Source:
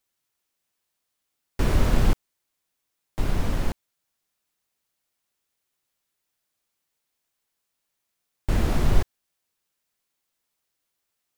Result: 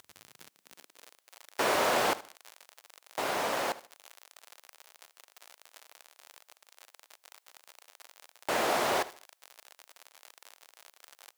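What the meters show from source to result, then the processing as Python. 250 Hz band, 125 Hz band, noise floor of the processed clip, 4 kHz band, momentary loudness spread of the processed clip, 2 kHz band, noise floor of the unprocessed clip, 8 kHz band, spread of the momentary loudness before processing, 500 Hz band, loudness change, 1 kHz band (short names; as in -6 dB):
-10.0 dB, -25.0 dB, -76 dBFS, +4.5 dB, 16 LU, +5.0 dB, -80 dBFS, +4.5 dB, 16 LU, +3.0 dB, -3.5 dB, +6.5 dB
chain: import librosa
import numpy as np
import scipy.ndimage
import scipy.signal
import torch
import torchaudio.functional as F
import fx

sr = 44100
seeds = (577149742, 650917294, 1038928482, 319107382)

y = fx.echo_feedback(x, sr, ms=74, feedback_pct=30, wet_db=-17)
y = fx.dmg_crackle(y, sr, seeds[0], per_s=72.0, level_db=-36.0)
y = fx.filter_sweep_highpass(y, sr, from_hz=80.0, to_hz=630.0, start_s=0.09, end_s=1.31, q=1.3)
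y = y * 10.0 ** (4.0 / 20.0)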